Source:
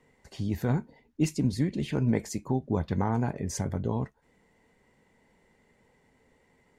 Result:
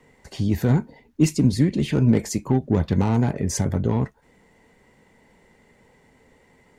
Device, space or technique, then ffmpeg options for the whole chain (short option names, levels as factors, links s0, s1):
one-band saturation: -filter_complex "[0:a]acrossover=split=440|4500[s0][s1][s2];[s1]asoftclip=type=tanh:threshold=0.0178[s3];[s0][s3][s2]amix=inputs=3:normalize=0,volume=2.66"